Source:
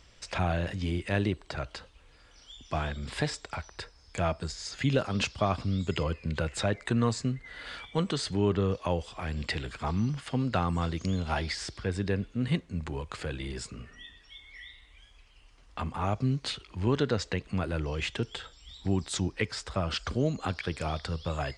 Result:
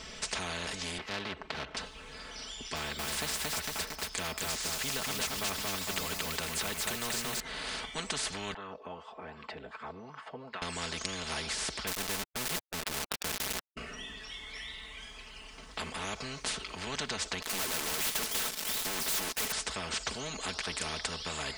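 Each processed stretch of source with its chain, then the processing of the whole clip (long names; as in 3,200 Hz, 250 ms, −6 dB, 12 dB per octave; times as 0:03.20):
0:00.98–0:01.77: gap after every zero crossing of 0.15 ms + band-pass filter 110–2,400 Hz
0:02.76–0:07.40: log-companded quantiser 8 bits + feedback echo at a low word length 228 ms, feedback 35%, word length 8 bits, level −3.5 dB
0:08.54–0:10.62: high-pass filter 53 Hz + LFO wah 2.6 Hz 450–1,200 Hz, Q 5.1
0:11.87–0:13.77: high-frequency loss of the air 170 metres + centre clipping without the shift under −32 dBFS
0:17.42–0:19.52: high-pass filter 260 Hz 24 dB per octave + leveller curve on the samples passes 5 + gain into a clipping stage and back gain 31.5 dB
whole clip: comb filter 4.6 ms, depth 80%; every bin compressed towards the loudest bin 4 to 1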